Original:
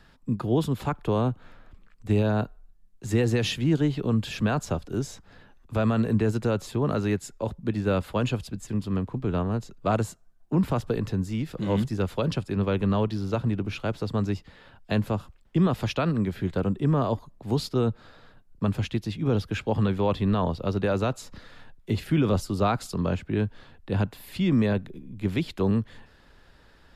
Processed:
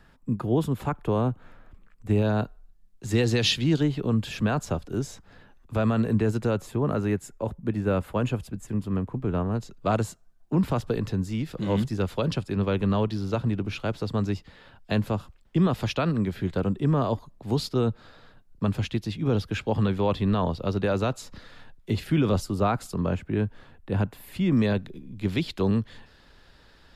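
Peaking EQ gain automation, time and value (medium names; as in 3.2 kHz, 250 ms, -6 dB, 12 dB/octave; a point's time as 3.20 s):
peaking EQ 4.3 kHz 1.2 oct
-6 dB
from 2.22 s +1.5 dB
from 3.14 s +9 dB
from 3.83 s -1.5 dB
from 6.58 s -8.5 dB
from 9.55 s +1.5 dB
from 22.46 s -5.5 dB
from 24.57 s +5 dB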